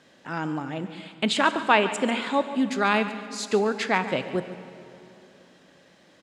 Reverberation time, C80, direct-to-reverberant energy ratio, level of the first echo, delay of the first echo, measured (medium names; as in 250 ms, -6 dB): 3.0 s, 11.0 dB, 10.0 dB, -14.5 dB, 142 ms